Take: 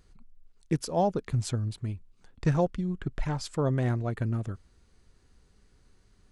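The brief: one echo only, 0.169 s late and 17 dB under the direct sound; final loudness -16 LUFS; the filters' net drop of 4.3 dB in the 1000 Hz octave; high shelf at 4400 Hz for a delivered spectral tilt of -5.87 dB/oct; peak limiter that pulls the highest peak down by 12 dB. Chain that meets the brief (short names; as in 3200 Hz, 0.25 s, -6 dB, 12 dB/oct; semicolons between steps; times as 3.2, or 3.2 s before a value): bell 1000 Hz -7 dB; high shelf 4400 Hz +8.5 dB; limiter -25 dBFS; echo 0.169 s -17 dB; gain +19 dB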